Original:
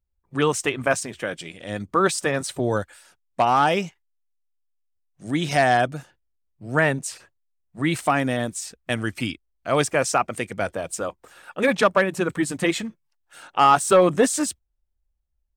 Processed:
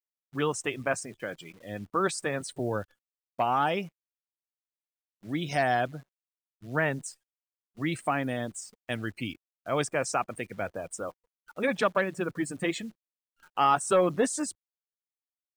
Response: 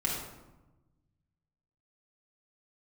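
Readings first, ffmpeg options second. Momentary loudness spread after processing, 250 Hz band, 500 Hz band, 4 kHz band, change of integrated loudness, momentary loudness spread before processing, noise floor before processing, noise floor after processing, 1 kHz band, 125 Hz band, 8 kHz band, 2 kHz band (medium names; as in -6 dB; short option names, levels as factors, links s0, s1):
14 LU, -7.5 dB, -7.5 dB, -8.5 dB, -7.5 dB, 15 LU, -73 dBFS, under -85 dBFS, -7.5 dB, -7.5 dB, -8.5 dB, -7.5 dB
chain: -af "agate=range=0.398:threshold=0.00631:ratio=16:detection=peak,afftdn=nr=32:nf=-37,acrusher=bits=9:dc=4:mix=0:aa=0.000001,volume=0.422"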